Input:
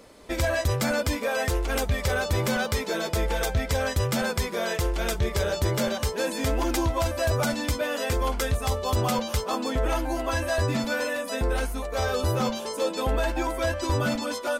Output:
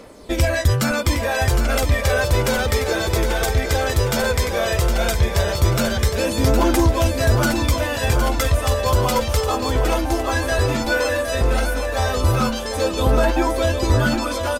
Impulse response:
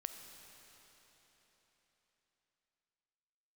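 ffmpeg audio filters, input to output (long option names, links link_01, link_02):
-af "aphaser=in_gain=1:out_gain=1:delay=2.8:decay=0.4:speed=0.15:type=triangular,aecho=1:1:762|1524|2286|3048|3810:0.422|0.177|0.0744|0.0312|0.0131,volume=5dB"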